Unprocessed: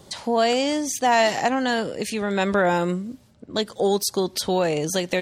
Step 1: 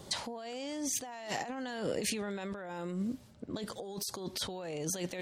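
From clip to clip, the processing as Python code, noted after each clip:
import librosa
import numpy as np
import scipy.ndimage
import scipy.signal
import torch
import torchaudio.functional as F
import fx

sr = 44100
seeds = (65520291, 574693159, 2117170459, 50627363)

y = fx.over_compress(x, sr, threshold_db=-30.0, ratio=-1.0)
y = F.gain(torch.from_numpy(y), -8.5).numpy()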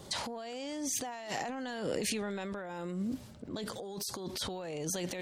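y = fx.transient(x, sr, attack_db=-2, sustain_db=7)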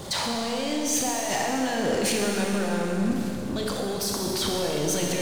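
y = fx.power_curve(x, sr, exponent=0.7)
y = fx.rev_schroeder(y, sr, rt60_s=3.0, comb_ms=27, drr_db=-0.5)
y = F.gain(torch.from_numpy(y), 3.5).numpy()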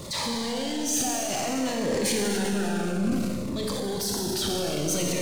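y = fx.transient(x, sr, attack_db=-5, sustain_db=6)
y = fx.notch_cascade(y, sr, direction='falling', hz=0.58)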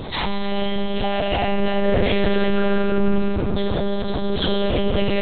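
y = fx.echo_wet_bandpass(x, sr, ms=350, feedback_pct=63, hz=660.0, wet_db=-7.0)
y = fx.lpc_monotone(y, sr, seeds[0], pitch_hz=200.0, order=8)
y = F.gain(torch.from_numpy(y), 9.0).numpy()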